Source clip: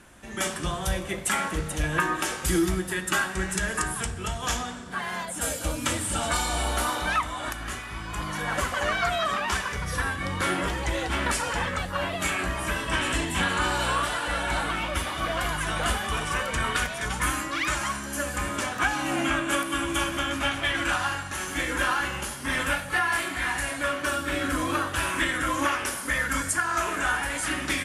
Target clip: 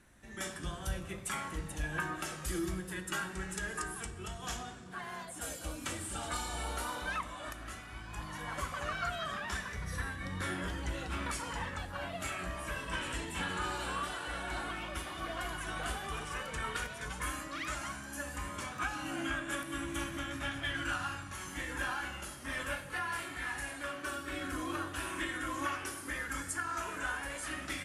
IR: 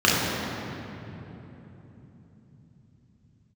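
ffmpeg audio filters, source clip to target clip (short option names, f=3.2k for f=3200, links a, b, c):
-filter_complex "[0:a]flanger=delay=0.5:depth=2.3:regen=60:speed=0.1:shape=sinusoidal,asplit=2[a][b];[1:a]atrim=start_sample=2205,asetrate=61740,aresample=44100,lowshelf=f=160:g=11.5[c];[b][c]afir=irnorm=-1:irlink=0,volume=-34dB[d];[a][d]amix=inputs=2:normalize=0,volume=-7.5dB"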